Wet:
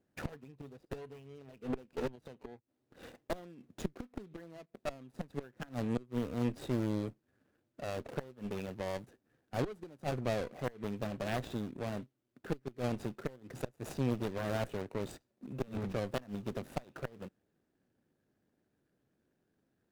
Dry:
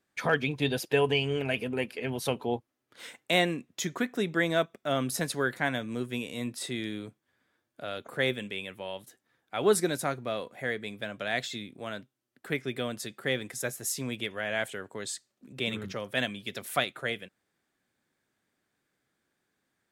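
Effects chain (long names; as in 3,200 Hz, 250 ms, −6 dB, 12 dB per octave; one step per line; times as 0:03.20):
running median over 41 samples
gate with flip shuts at −25 dBFS, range −26 dB
asymmetric clip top −46.5 dBFS
level +5.5 dB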